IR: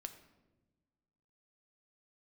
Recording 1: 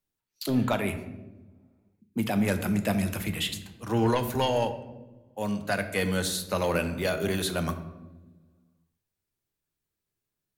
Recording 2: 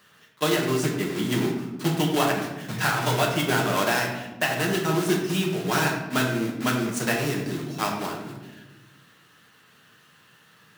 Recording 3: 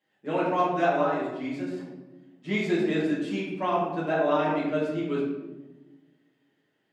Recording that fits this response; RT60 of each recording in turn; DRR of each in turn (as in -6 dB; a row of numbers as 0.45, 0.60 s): 1; not exponential, 1.1 s, 1.1 s; 7.5, -1.5, -8.0 dB